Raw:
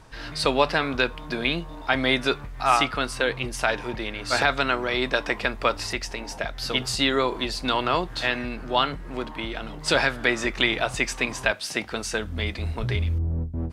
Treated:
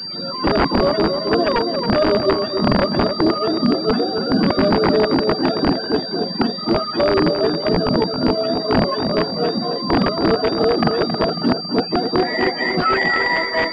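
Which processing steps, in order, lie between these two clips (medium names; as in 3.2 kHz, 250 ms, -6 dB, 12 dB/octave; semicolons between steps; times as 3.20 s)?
spectrum inverted on a logarithmic axis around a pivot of 400 Hz; reverb removal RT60 0.59 s; steep high-pass 170 Hz 48 dB/octave; in parallel at +1 dB: compressor with a negative ratio -30 dBFS, ratio -0.5; 7.53–8.50 s: on the sum: AM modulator 65 Hz, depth 30%; integer overflow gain 16.5 dB; tape echo 273 ms, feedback 52%, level -3 dB, low-pass 1.1 kHz; class-D stage that switches slowly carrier 4.7 kHz; trim +8 dB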